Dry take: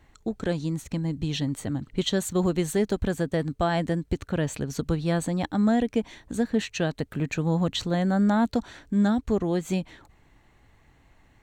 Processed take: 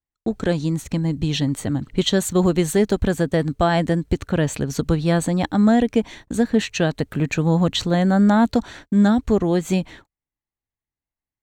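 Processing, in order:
noise gate −47 dBFS, range −42 dB
level +6.5 dB

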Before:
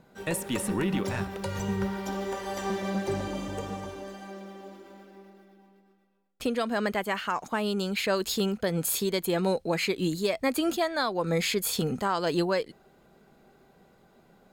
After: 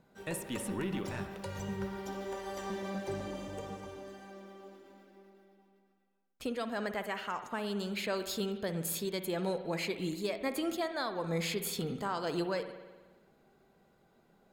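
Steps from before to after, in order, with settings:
spring reverb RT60 1.3 s, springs 54 ms, chirp 35 ms, DRR 9 dB
level −8 dB

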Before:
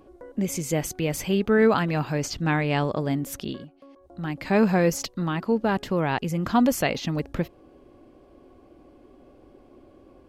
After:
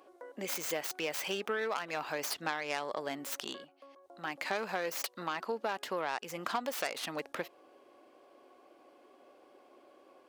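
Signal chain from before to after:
stylus tracing distortion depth 0.16 ms
high-pass filter 630 Hz 12 dB per octave
downward compressor 6 to 1, threshold −31 dBFS, peak gain reduction 11.5 dB

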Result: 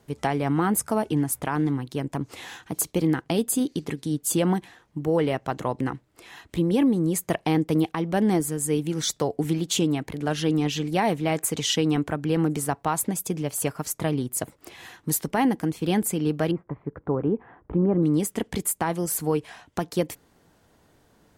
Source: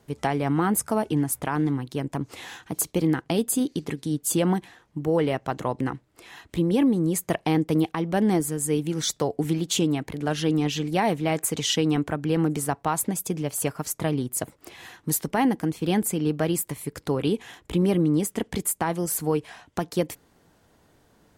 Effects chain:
0:16.51–0:18.03: low-pass filter 1,400 Hz 24 dB per octave

